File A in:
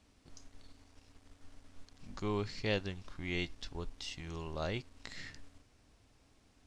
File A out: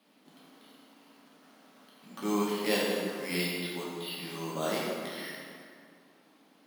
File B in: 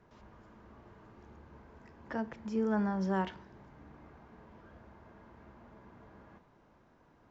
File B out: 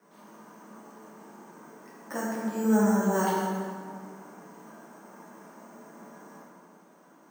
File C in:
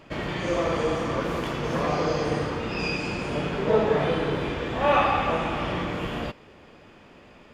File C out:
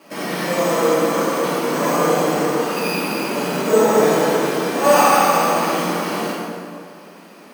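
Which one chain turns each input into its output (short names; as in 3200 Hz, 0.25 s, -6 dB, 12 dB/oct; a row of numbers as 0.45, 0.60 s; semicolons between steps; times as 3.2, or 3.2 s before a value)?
Chebyshev band-pass 170–4400 Hz, order 5; sample-and-hold 6×; plate-style reverb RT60 2.1 s, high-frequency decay 0.65×, DRR -6.5 dB; gain +1.5 dB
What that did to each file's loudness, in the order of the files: +7.0, +6.5, +8.0 LU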